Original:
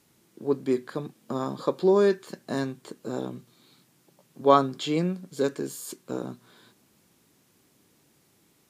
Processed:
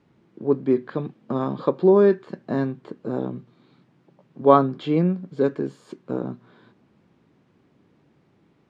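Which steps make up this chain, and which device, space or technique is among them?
0:00.82–0:01.69: dynamic equaliser 3,000 Hz, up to +7 dB, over −55 dBFS, Q 1.2
phone in a pocket (low-pass filter 3,400 Hz 12 dB per octave; parametric band 160 Hz +2.5 dB 1.5 octaves; high-shelf EQ 2,400 Hz −11.5 dB)
level +4.5 dB

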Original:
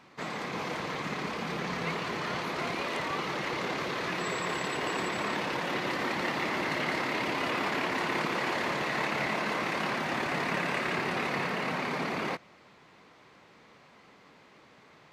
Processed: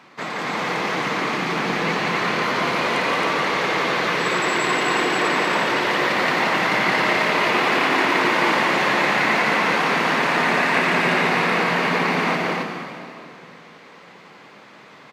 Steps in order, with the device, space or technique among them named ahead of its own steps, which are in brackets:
stadium PA (high-pass filter 130 Hz 12 dB per octave; parametric band 1,600 Hz +3.5 dB 2.7 octaves; loudspeakers that aren't time-aligned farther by 60 metres −4 dB, 93 metres −2 dB; convolution reverb RT60 2.6 s, pre-delay 118 ms, DRR 6 dB)
level +5.5 dB

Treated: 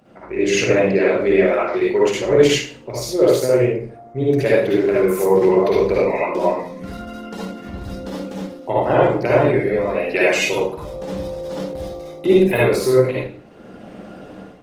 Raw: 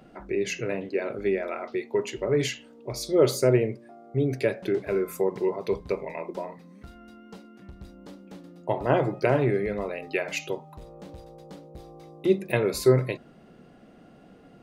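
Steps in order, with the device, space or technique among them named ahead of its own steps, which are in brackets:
far-field microphone of a smart speaker (convolution reverb RT60 0.45 s, pre-delay 49 ms, DRR −6 dB; high-pass filter 130 Hz 6 dB per octave; automatic gain control gain up to 12 dB; level −1 dB; Opus 16 kbit/s 48,000 Hz)

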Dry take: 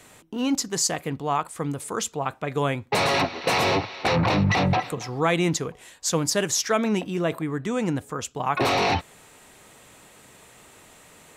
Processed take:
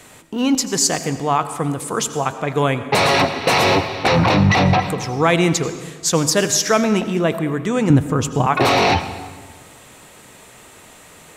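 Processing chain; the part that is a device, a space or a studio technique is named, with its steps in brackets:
0:07.90–0:08.47: low-shelf EQ 360 Hz +12 dB
saturated reverb return (on a send at −10.5 dB: convolution reverb RT60 1.4 s, pre-delay 78 ms + soft clipping −14.5 dBFS, distortion −20 dB)
on the sum: level +6.5 dB

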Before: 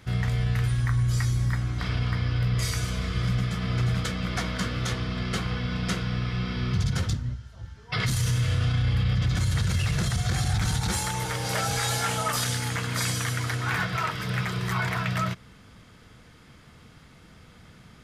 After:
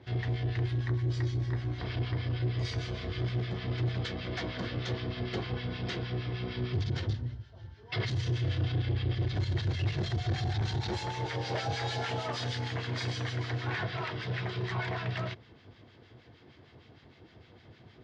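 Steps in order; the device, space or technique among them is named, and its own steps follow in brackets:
guitar amplifier with harmonic tremolo (two-band tremolo in antiphase 6.5 Hz, depth 70%, crossover 1,200 Hz; soft clipping −24.5 dBFS, distortion −14 dB; loudspeaker in its box 90–4,500 Hz, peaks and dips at 100 Hz +6 dB, 180 Hz −9 dB, 360 Hz +9 dB, 700 Hz +4 dB, 1,300 Hz −9 dB, 2,400 Hz −3 dB)

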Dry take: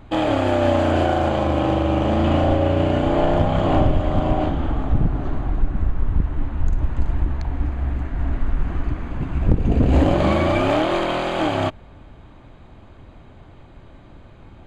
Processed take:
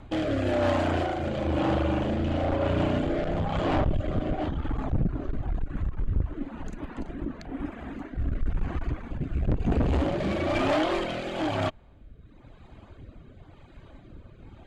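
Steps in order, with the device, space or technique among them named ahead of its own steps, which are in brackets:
reverb reduction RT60 1.2 s
0:06.33–0:08.17: low shelf with overshoot 150 Hz −14 dB, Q 1.5
overdriven rotary cabinet (tube saturation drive 22 dB, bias 0.45; rotating-speaker cabinet horn 1 Hz)
level +2.5 dB

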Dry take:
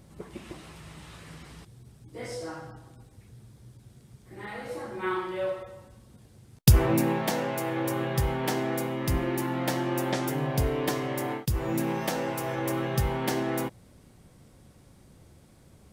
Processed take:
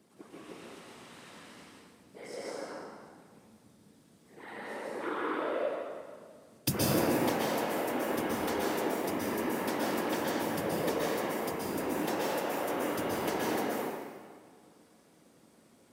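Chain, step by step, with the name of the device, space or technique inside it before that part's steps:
whispering ghost (random phases in short frames; high-pass filter 250 Hz 12 dB per octave; convolution reverb RT60 1.8 s, pre-delay 117 ms, DRR −4.5 dB)
level −7.5 dB

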